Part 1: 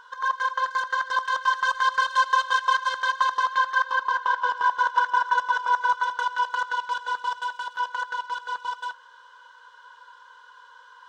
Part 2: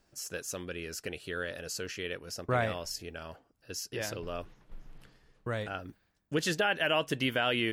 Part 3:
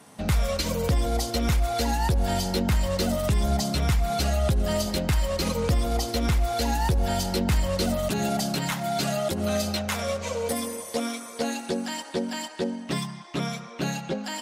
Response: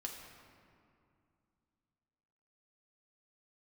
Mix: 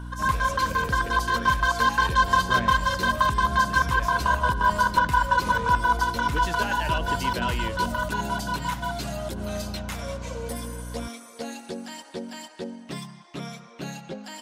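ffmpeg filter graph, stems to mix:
-filter_complex "[0:a]aeval=exprs='val(0)+0.0178*(sin(2*PI*60*n/s)+sin(2*PI*2*60*n/s)/2+sin(2*PI*3*60*n/s)/3+sin(2*PI*4*60*n/s)/4+sin(2*PI*5*60*n/s)/5)':c=same,volume=0.5dB[a];[1:a]volume=-4dB[b];[2:a]volume=-6.5dB[c];[a][b][c]amix=inputs=3:normalize=0"

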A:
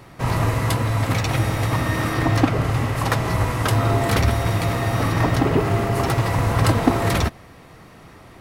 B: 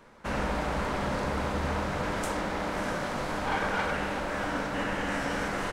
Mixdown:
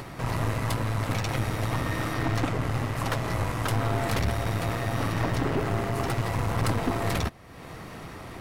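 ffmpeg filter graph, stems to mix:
-filter_complex "[0:a]volume=-4dB[a];[1:a]adelay=200,volume=-7dB[b];[a][b]amix=inputs=2:normalize=0,acompressor=mode=upward:threshold=-26dB:ratio=2.5,aeval=exprs='(tanh(10*val(0)+0.6)-tanh(0.6))/10':c=same"

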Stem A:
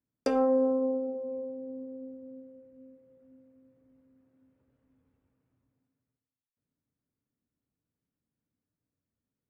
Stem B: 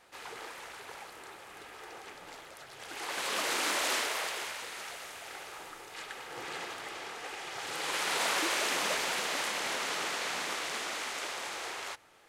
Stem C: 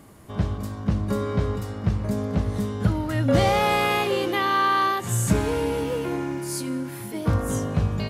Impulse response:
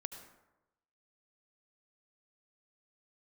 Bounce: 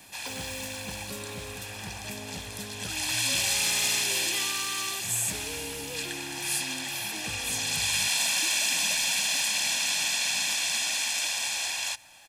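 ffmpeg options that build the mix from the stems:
-filter_complex "[0:a]acrusher=bits=6:mode=log:mix=0:aa=0.000001,volume=-14.5dB[a];[1:a]highshelf=f=9k:g=-6,aecho=1:1:1.2:0.97,volume=0.5dB[b];[2:a]volume=15dB,asoftclip=hard,volume=-15dB,volume=-11dB[c];[a][b][c]amix=inputs=3:normalize=0,aexciter=amount=2.5:drive=7.2:freq=2.2k,acrossover=split=320|2000[d][e][f];[d]acompressor=threshold=-42dB:ratio=4[g];[e]acompressor=threshold=-41dB:ratio=4[h];[f]acompressor=threshold=-24dB:ratio=4[i];[g][h][i]amix=inputs=3:normalize=0"

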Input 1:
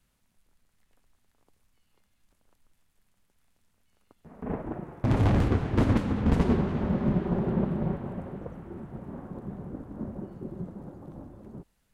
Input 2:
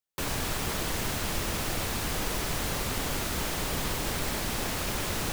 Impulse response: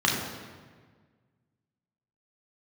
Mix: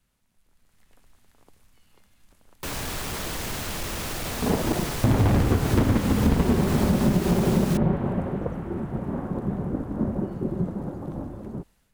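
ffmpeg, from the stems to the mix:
-filter_complex "[0:a]dynaudnorm=f=270:g=5:m=11dB,volume=-0.5dB[a];[1:a]asoftclip=type=hard:threshold=-26dB,adelay=2450,volume=0.5dB[b];[a][b]amix=inputs=2:normalize=0,acompressor=threshold=-17dB:ratio=6"

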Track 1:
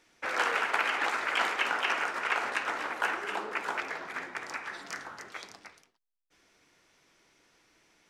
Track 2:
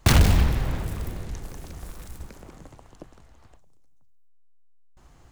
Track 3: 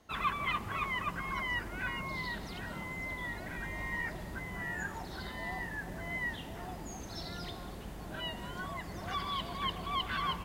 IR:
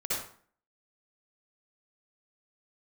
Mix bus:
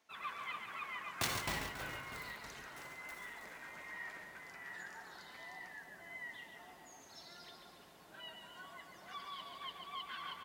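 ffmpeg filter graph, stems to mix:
-filter_complex "[0:a]alimiter=level_in=7.5dB:limit=-24dB:level=0:latency=1:release=151,volume=-7.5dB,volume=-8.5dB[a];[1:a]aeval=exprs='val(0)*pow(10,-30*if(lt(mod(3.1*n/s,1),2*abs(3.1)/1000),1-mod(3.1*n/s,1)/(2*abs(3.1)/1000),(mod(3.1*n/s,1)-2*abs(3.1)/1000)/(1-2*abs(3.1)/1000))/20)':c=same,adelay=1150,volume=-1.5dB,asplit=3[b][c][d];[c]volume=-8.5dB[e];[d]volume=-5.5dB[f];[2:a]volume=-6dB,asplit=2[g][h];[h]volume=-6.5dB[i];[3:a]atrim=start_sample=2205[j];[e][j]afir=irnorm=-1:irlink=0[k];[f][i]amix=inputs=2:normalize=0,aecho=0:1:139|278|417|556|695|834|973|1112|1251:1|0.57|0.325|0.185|0.106|0.0602|0.0343|0.0195|0.0111[l];[a][b][g][k][l]amix=inputs=5:normalize=0,highpass=f=750:p=1,flanger=delay=4.4:depth=3.2:regen=-64:speed=1.2:shape=sinusoidal"

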